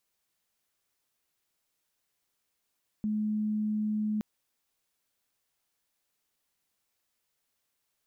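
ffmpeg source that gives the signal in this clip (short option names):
-f lavfi -i "aevalsrc='0.0447*sin(2*PI*213*t)':d=1.17:s=44100"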